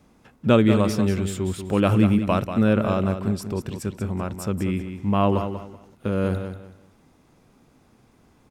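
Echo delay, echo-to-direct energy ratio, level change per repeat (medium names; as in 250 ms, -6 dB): 189 ms, -8.5 dB, -12.0 dB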